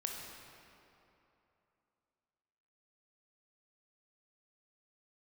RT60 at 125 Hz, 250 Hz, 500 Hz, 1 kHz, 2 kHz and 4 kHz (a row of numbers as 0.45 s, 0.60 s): 2.9 s, 3.0 s, 3.0 s, 3.0 s, 2.5 s, 1.9 s